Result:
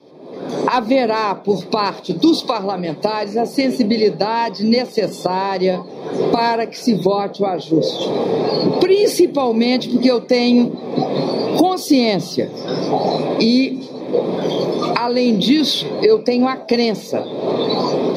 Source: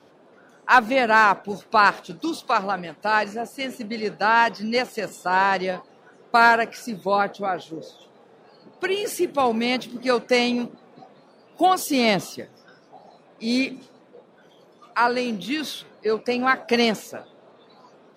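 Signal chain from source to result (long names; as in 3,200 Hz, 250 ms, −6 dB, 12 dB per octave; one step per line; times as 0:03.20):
camcorder AGC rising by 49 dB per second
convolution reverb RT60 0.30 s, pre-delay 3 ms, DRR 14.5 dB
boost into a limiter −5 dB
level −1 dB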